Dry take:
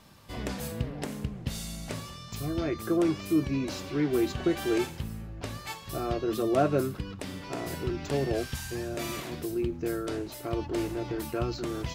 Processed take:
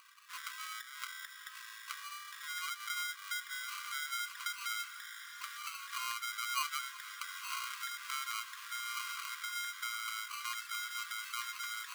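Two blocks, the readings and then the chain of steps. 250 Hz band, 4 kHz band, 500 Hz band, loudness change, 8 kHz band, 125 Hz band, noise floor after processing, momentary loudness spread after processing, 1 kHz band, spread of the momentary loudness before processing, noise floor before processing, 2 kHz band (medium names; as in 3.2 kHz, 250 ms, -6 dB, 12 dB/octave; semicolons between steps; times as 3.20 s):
under -40 dB, +1.0 dB, under -40 dB, -8.5 dB, +0.5 dB, under -40 dB, -52 dBFS, 7 LU, -3.0 dB, 11 LU, -44 dBFS, +2.0 dB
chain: spectral contrast enhancement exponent 1.6; compression 4:1, threshold -36 dBFS, peak gain reduction 13.5 dB; sample-and-hold 25×; brick-wall FIR high-pass 1 kHz; echo that smears into a reverb 949 ms, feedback 67%, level -12 dB; trim +6 dB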